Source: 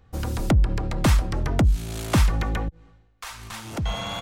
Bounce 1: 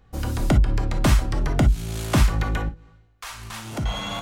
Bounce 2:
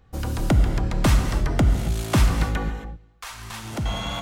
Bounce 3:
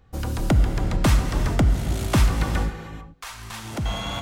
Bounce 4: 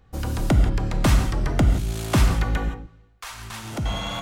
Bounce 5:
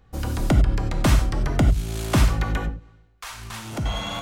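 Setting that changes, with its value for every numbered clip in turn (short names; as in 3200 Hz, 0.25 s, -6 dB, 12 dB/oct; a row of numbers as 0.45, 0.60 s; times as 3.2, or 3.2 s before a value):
non-linear reverb, gate: 80, 300, 470, 200, 120 ms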